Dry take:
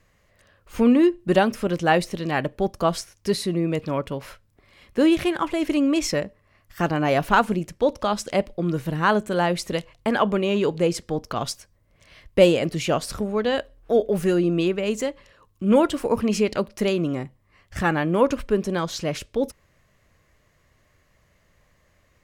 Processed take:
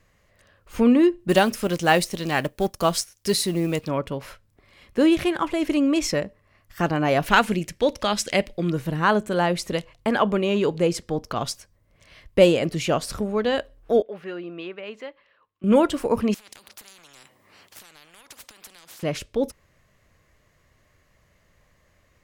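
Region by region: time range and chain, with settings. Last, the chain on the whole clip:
0:01.29–0:03.88: mu-law and A-law mismatch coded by A + high-shelf EQ 3,500 Hz +11 dB
0:07.26–0:08.70: de-essing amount 25% + high shelf with overshoot 1,500 Hz +6 dB, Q 1.5
0:14.02–0:15.64: high-pass filter 1,500 Hz 6 dB per octave + high-frequency loss of the air 370 metres
0:16.34–0:19.03: high-pass filter 250 Hz + downward compressor 16 to 1, threshold −30 dBFS + every bin compressed towards the loudest bin 10 to 1
whole clip: no processing

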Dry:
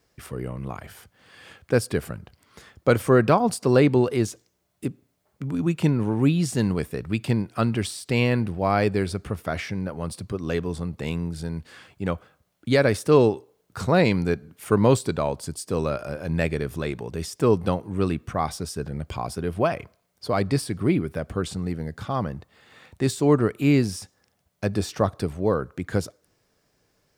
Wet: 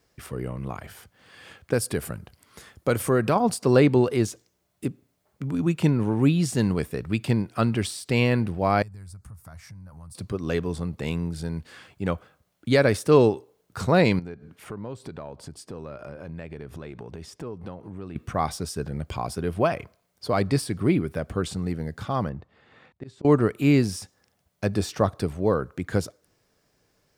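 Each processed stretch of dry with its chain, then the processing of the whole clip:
0:01.73–0:03.36: parametric band 11,000 Hz +8 dB 1 octave + downward compressor 1.5 to 1, threshold −24 dBFS
0:08.82–0:10.15: drawn EQ curve 120 Hz 0 dB, 240 Hz −16 dB, 380 Hz −24 dB, 1,000 Hz −8 dB, 3,100 Hz −20 dB, 4,600 Hz −10 dB, 7,800 Hz −1 dB + downward compressor 4 to 1, threshold −41 dBFS
0:14.19–0:18.16: low-pass filter 2,300 Hz 6 dB per octave + downward compressor 4 to 1, threshold −35 dBFS + one half of a high-frequency compander encoder only
0:22.29–0:23.25: volume swells 337 ms + head-to-tape spacing loss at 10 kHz 22 dB
whole clip: no processing

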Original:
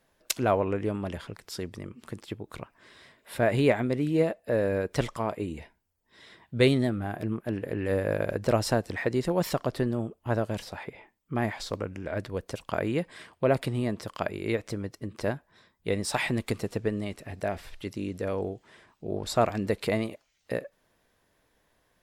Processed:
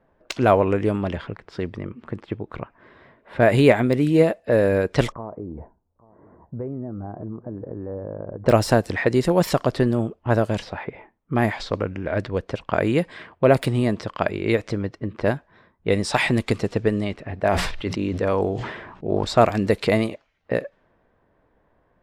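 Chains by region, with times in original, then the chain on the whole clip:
0:05.12–0:08.46: downward compressor 4 to 1, threshold −38 dBFS + low-pass filter 1,100 Hz 24 dB per octave + single-tap delay 836 ms −21 dB
0:17.40–0:19.25: mains-hum notches 60/120/180 Hz + dynamic equaliser 1,000 Hz, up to +6 dB, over −49 dBFS, Q 1.8 + level that may fall only so fast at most 42 dB per second
whole clip: low-pass that shuts in the quiet parts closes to 1,200 Hz, open at −23 dBFS; de-essing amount 70%; level +8 dB

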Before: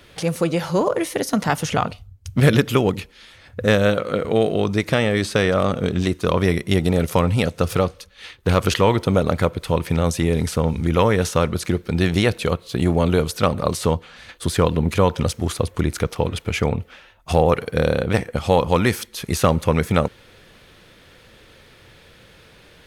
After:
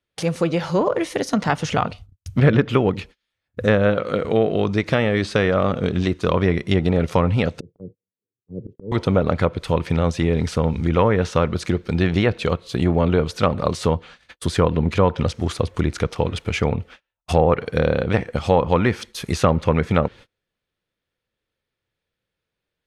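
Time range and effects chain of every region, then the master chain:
0:07.60–0:08.92: elliptic band-pass filter 110–420 Hz, stop band 50 dB + volume swells 273 ms
whole clip: treble cut that deepens with the level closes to 2,100 Hz, closed at −12 dBFS; noise gate −39 dBFS, range −34 dB

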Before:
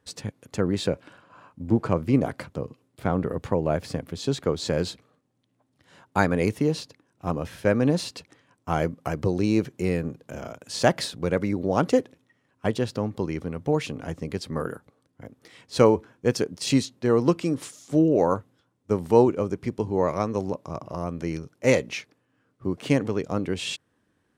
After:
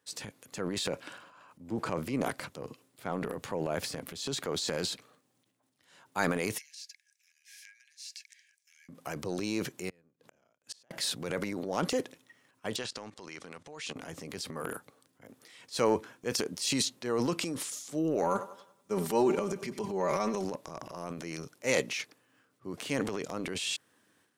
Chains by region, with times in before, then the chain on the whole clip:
0:06.58–0:08.89: downward compressor 16 to 1, threshold −33 dBFS + Chebyshev high-pass with heavy ripple 1,600 Hz, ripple 9 dB
0:09.89–0:10.91: high-shelf EQ 6,100 Hz −8 dB + compressor whose output falls as the input rises −26 dBFS + gate with flip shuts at −25 dBFS, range −40 dB
0:12.76–0:13.96: low-pass filter 8,800 Hz 24 dB per octave + tilt shelving filter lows −6 dB, about 650 Hz + output level in coarse steps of 18 dB
0:18.22–0:20.44: comb filter 5.1 ms, depth 74% + feedback echo with a high-pass in the loop 94 ms, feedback 43%, high-pass 170 Hz, level −21 dB
whole clip: high-pass filter 100 Hz; spectral tilt +2.5 dB per octave; transient designer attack −3 dB, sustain +10 dB; level −6.5 dB

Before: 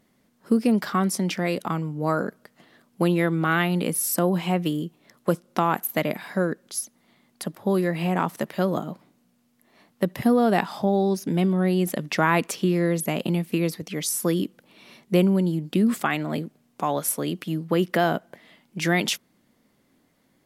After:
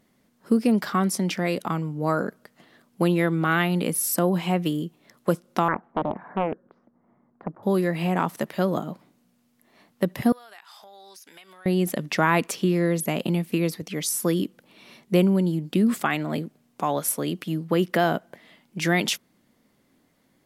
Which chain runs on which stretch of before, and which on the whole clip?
0:05.68–0:07.63: low-pass filter 1,300 Hz 24 dB per octave + highs frequency-modulated by the lows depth 0.78 ms
0:10.32–0:11.66: high-pass filter 1,500 Hz + downward compressor, threshold −44 dBFS
whole clip: no processing

